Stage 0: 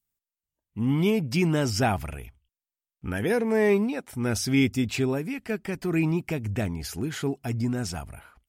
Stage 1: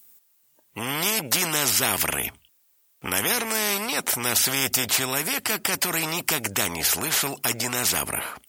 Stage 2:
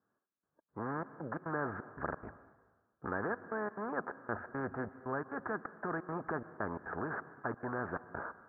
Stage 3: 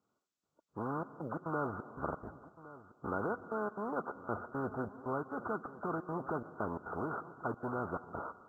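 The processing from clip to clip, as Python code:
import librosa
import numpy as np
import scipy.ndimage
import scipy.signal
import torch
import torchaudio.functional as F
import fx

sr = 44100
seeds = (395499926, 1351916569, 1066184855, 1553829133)

y1 = scipy.signal.sosfilt(scipy.signal.butter(2, 220.0, 'highpass', fs=sr, output='sos'), x)
y1 = fx.high_shelf(y1, sr, hz=8600.0, db=9.5)
y1 = fx.spectral_comp(y1, sr, ratio=4.0)
y1 = y1 * 10.0 ** (6.0 / 20.0)
y2 = scipy.signal.sosfilt(scipy.signal.cheby1(6, 3, 1700.0, 'lowpass', fs=sr, output='sos'), y1)
y2 = fx.step_gate(y2, sr, bpm=175, pattern='xxx..xx.x', floor_db=-24.0, edge_ms=4.5)
y2 = fx.rev_plate(y2, sr, seeds[0], rt60_s=1.4, hf_ratio=0.8, predelay_ms=105, drr_db=16.0)
y2 = y2 * 10.0 ** (-5.5 / 20.0)
y3 = fx.freq_compress(y2, sr, knee_hz=1100.0, ratio=1.5)
y3 = y3 + 10.0 ** (-17.0 / 20.0) * np.pad(y3, (int(1113 * sr / 1000.0), 0))[:len(y3)]
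y3 = fx.quant_float(y3, sr, bits=6)
y3 = y3 * 10.0 ** (1.0 / 20.0)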